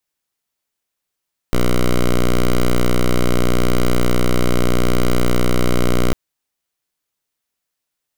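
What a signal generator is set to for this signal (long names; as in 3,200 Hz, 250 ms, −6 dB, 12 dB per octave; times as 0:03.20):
pulse wave 60.8 Hz, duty 7% −13 dBFS 4.60 s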